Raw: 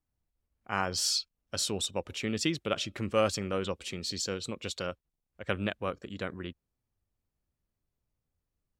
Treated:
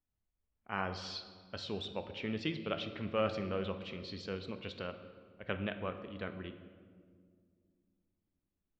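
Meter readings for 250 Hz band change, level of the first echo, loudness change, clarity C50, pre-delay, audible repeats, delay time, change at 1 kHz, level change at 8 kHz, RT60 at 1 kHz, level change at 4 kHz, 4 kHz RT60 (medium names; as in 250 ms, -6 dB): -4.5 dB, no echo, -7.0 dB, 10.0 dB, 4 ms, no echo, no echo, -5.5 dB, under -25 dB, 1.7 s, -10.0 dB, 1.1 s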